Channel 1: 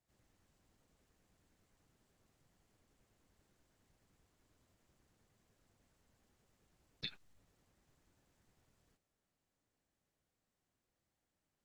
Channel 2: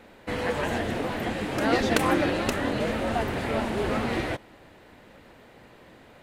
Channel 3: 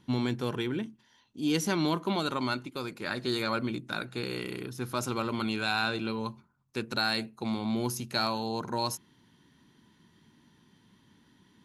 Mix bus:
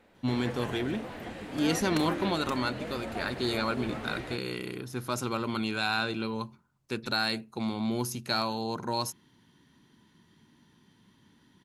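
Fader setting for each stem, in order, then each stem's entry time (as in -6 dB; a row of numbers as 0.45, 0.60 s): -9.5, -11.0, 0.0 dB; 0.00, 0.00, 0.15 s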